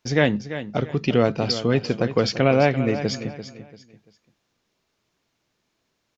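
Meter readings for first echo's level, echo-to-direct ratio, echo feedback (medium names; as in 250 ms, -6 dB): -12.0 dB, -11.5 dB, 31%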